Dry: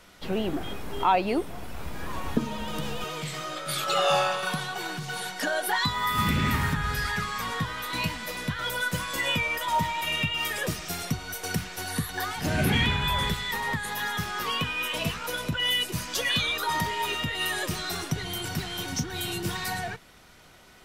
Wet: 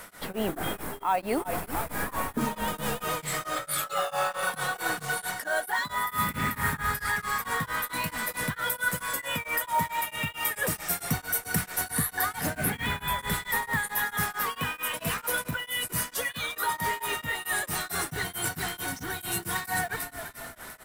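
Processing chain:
in parallel at −5 dB: floating-point word with a short mantissa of 2 bits
on the sum: spectral tilt +2 dB per octave
echo with shifted repeats 349 ms, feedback 53%, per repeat −34 Hz, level −16.5 dB
reversed playback
downward compressor 6 to 1, threshold −30 dBFS, peak gain reduction 16 dB
reversed playback
flat-topped bell 4,100 Hz −9.5 dB
notch filter 360 Hz, Q 12
tremolo along a rectified sine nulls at 4.5 Hz
level +7.5 dB

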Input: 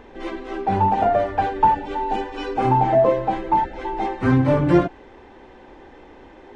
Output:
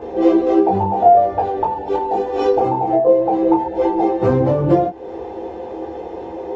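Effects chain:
flat-topped bell 570 Hz +12 dB
downward compressor 6 to 1, threshold −19 dBFS, peak gain reduction 17 dB
convolution reverb, pre-delay 3 ms, DRR −6 dB
level −1 dB

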